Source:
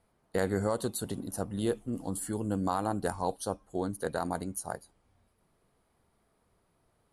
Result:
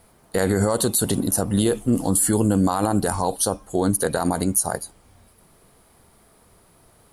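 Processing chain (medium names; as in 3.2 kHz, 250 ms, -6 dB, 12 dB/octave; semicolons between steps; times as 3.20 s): treble shelf 5.7 kHz +9.5 dB; loudness maximiser +24 dB; trim -8.5 dB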